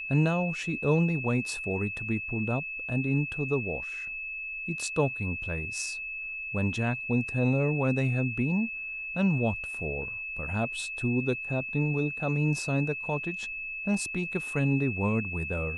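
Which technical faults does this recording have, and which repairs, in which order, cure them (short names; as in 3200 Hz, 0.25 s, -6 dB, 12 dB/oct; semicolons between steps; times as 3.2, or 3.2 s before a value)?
tone 2600 Hz -34 dBFS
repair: notch 2600 Hz, Q 30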